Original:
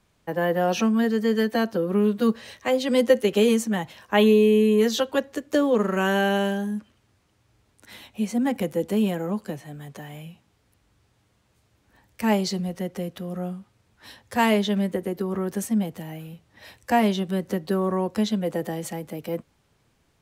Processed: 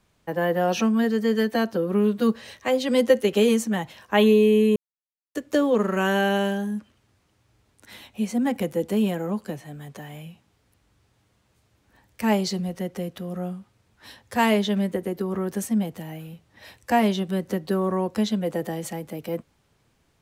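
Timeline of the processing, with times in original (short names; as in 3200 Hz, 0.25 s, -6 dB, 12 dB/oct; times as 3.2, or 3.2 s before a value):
4.76–5.35 mute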